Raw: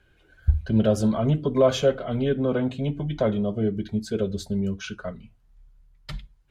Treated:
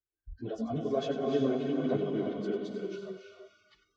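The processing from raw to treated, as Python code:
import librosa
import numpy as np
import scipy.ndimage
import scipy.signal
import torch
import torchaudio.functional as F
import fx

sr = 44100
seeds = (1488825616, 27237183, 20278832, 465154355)

y = fx.doppler_pass(x, sr, speed_mps=13, closest_m=13.0, pass_at_s=2.74)
y = fx.spec_box(y, sr, start_s=3.36, length_s=1.39, low_hz=720.0, high_hz=3500.0, gain_db=6)
y = fx.echo_diffused(y, sr, ms=530, feedback_pct=44, wet_db=-3.5)
y = fx.stretch_vocoder_free(y, sr, factor=0.61)
y = scipy.signal.sosfilt(scipy.signal.butter(4, 5800.0, 'lowpass', fs=sr, output='sos'), y)
y = fx.peak_eq(y, sr, hz=250.0, db=6.5, octaves=2.4)
y = y + 0.58 * np.pad(y, (int(2.7 * sr / 1000.0), 0))[:len(y)]
y = fx.echo_feedback(y, sr, ms=95, feedback_pct=33, wet_db=-11)
y = fx.noise_reduce_blind(y, sr, reduce_db=25)
y = F.gain(torch.from_numpy(y), -7.5).numpy()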